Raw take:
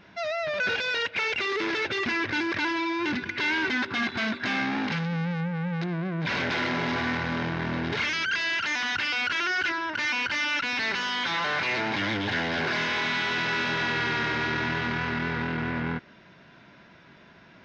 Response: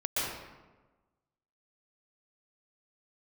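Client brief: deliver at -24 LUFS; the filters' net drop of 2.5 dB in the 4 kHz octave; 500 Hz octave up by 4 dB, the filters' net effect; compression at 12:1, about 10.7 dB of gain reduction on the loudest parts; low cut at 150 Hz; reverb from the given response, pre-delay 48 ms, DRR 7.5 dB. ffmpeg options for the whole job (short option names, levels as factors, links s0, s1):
-filter_complex "[0:a]highpass=150,equalizer=f=500:t=o:g=5.5,equalizer=f=4000:t=o:g=-3.5,acompressor=threshold=0.02:ratio=12,asplit=2[s0][s1];[1:a]atrim=start_sample=2205,adelay=48[s2];[s1][s2]afir=irnorm=-1:irlink=0,volume=0.168[s3];[s0][s3]amix=inputs=2:normalize=0,volume=3.98"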